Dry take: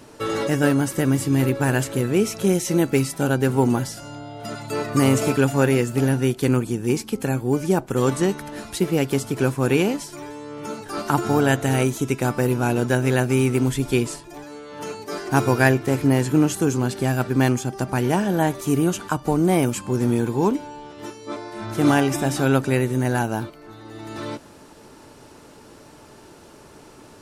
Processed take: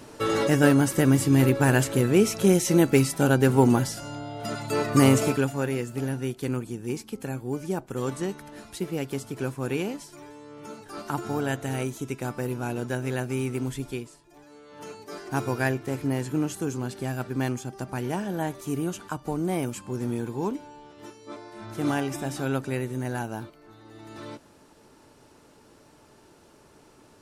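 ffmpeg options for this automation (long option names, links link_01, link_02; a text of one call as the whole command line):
ffmpeg -i in.wav -af "volume=11dB,afade=type=out:start_time=5.04:duration=0.5:silence=0.334965,afade=type=out:start_time=13.81:duration=0.3:silence=0.298538,afade=type=in:start_time=14.11:duration=0.73:silence=0.281838" out.wav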